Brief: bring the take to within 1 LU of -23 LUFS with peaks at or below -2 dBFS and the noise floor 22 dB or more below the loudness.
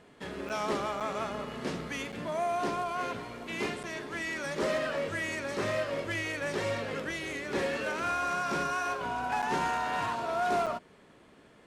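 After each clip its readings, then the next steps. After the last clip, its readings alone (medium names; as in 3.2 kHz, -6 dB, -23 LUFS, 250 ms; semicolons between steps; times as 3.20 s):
dropouts 6; longest dropout 7.0 ms; loudness -32.5 LUFS; peak level -19.5 dBFS; loudness target -23.0 LUFS
-> interpolate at 0.49/1.00/2.12/3.83/9.42/10.66 s, 7 ms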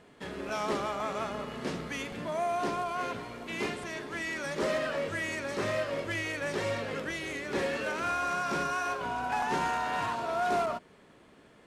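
dropouts 0; loudness -32.5 LUFS; peak level -19.0 dBFS; loudness target -23.0 LUFS
-> trim +9.5 dB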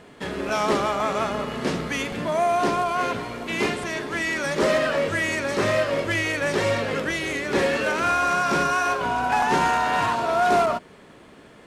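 loudness -23.0 LUFS; peak level -9.5 dBFS; noise floor -48 dBFS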